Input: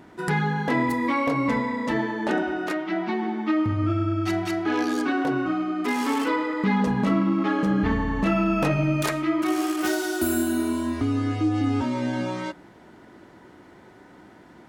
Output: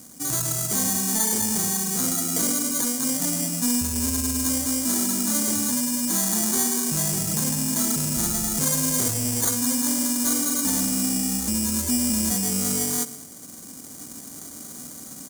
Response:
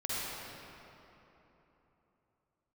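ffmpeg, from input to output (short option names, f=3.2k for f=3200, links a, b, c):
-filter_complex "[0:a]highpass=55,lowshelf=f=80:g=2.5,asplit=2[a][b];[b]adelay=110,lowpass=f=4.6k:p=1,volume=-18dB,asplit=2[c][d];[d]adelay=110,lowpass=f=4.6k:p=1,volume=0.47,asplit=2[e][f];[f]adelay=110,lowpass=f=4.6k:p=1,volume=0.47,asplit=2[g][h];[h]adelay=110,lowpass=f=4.6k:p=1,volume=0.47[i];[a][c][e][g][i]amix=inputs=5:normalize=0,asetrate=36028,aresample=44100,atempo=1.22405,acrusher=samples=16:mix=1:aa=0.000001,asoftclip=type=tanh:threshold=-23dB,asetrate=42336,aresample=44100,aexciter=amount=3.9:drive=9.9:freq=5.5k,equalizer=f=250:t=o:w=1:g=6,equalizer=f=4k:t=o:w=1:g=6,equalizer=f=8k:t=o:w=1:g=7,dynaudnorm=f=280:g=5:m=7dB,volume=-6.5dB"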